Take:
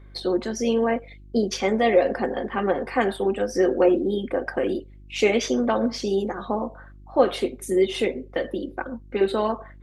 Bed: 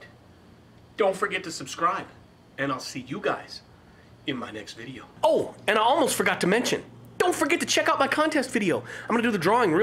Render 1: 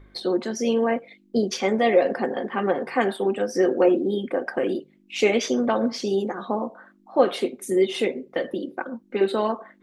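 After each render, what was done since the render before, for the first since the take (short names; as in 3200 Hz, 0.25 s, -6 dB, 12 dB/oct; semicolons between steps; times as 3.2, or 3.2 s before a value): de-hum 50 Hz, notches 3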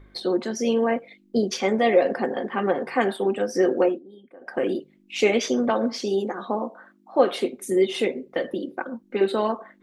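3.8–4.6 dip -22 dB, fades 0.20 s; 5.7–7.35 HPF 180 Hz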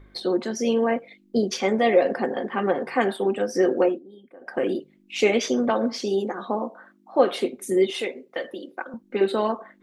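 7.9–8.94 HPF 700 Hz 6 dB/oct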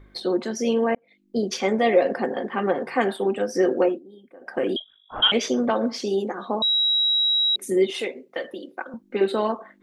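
0.95–1.52 fade in linear; 4.76–5.32 inverted band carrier 3600 Hz; 6.62–7.56 bleep 3860 Hz -17.5 dBFS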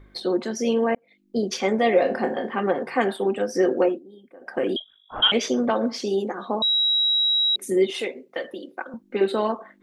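1.93–2.52 flutter echo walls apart 4.6 m, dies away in 0.22 s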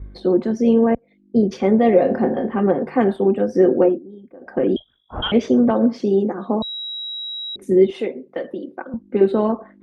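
HPF 44 Hz; tilt -4.5 dB/oct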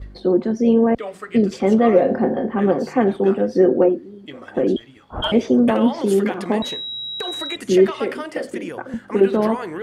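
add bed -8 dB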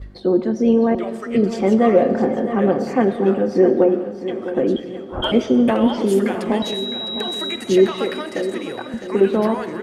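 on a send: feedback echo 0.658 s, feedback 47%, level -12 dB; on the sum: digital reverb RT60 1.5 s, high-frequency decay 0.9×, pre-delay 65 ms, DRR 13 dB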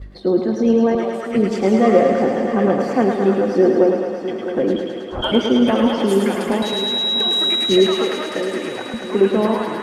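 thinning echo 0.107 s, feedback 80%, high-pass 400 Hz, level -4 dB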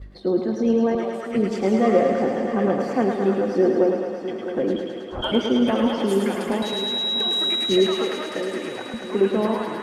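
gain -4.5 dB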